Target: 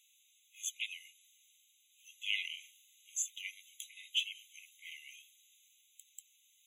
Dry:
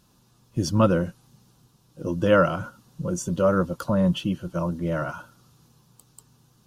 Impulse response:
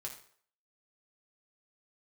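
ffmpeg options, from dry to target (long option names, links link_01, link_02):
-filter_complex "[0:a]highpass=frequency=720:width=0.5412,highpass=frequency=720:width=1.3066,acrossover=split=1100[link_01][link_02];[link_01]aeval=exprs='0.119*sin(PI/2*1.58*val(0)/0.119)':channel_layout=same[link_03];[link_03][link_02]amix=inputs=2:normalize=0,asettb=1/sr,asplit=3[link_04][link_05][link_06];[link_04]atrim=end=2.454[link_07];[link_05]atrim=start=2.45:end=3.23,asetpts=PTS-STARTPTS,afade=type=in:duration=0.004:curve=qsin,afade=type=out:start_time=0.776:duration=0.004:curve=qsin,asplit=2[link_08][link_09];[link_09]adelay=44,volume=-7.5dB[link_10];[link_08][link_10]amix=inputs=2:normalize=0,atrim=end_sample=34398[link_11];[link_06]atrim=start=3.226[link_12];[link_07][link_11]acrossfade=duration=0.004:curve1=hsin:curve2=qsin[link_13];[link_13][link_12]acrossfade=duration=0.004:curve1=qsin:curve2=hsin,afftfilt=real='re*eq(mod(floor(b*sr/1024/2000),2),1)':imag='im*eq(mod(floor(b*sr/1024/2000),2),1)':win_size=1024:overlap=0.75,volume=1.5dB"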